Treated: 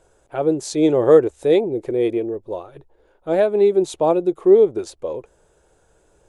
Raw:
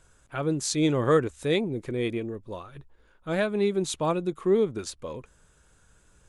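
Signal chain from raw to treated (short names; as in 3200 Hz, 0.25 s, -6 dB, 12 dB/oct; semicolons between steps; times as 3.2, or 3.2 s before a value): band shelf 530 Hz +12.5 dB; gain -1.5 dB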